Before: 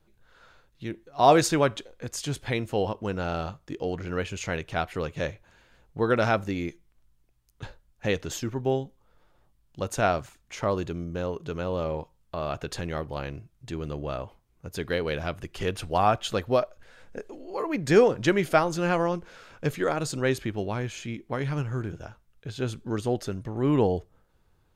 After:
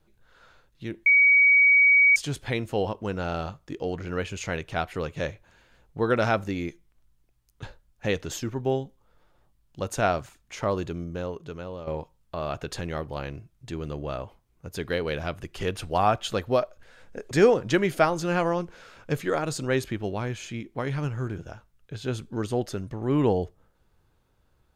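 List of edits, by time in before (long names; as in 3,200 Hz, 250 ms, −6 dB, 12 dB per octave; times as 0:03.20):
0:01.06–0:02.16: beep over 2,260 Hz −14 dBFS
0:11.03–0:11.87: fade out, to −11 dB
0:17.31–0:17.85: remove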